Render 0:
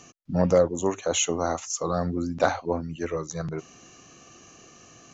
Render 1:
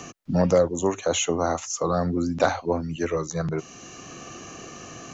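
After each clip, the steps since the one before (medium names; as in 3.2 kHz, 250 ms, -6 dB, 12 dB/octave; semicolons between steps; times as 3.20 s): three bands compressed up and down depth 40%; trim +2.5 dB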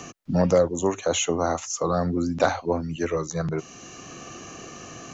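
no audible change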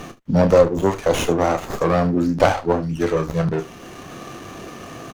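early reflections 30 ms -9 dB, 74 ms -18 dB; sliding maximum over 9 samples; trim +5.5 dB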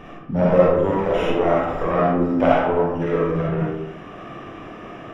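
Savitzky-Golay filter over 25 samples; reverberation RT60 0.90 s, pre-delay 15 ms, DRR -5.5 dB; trim -6.5 dB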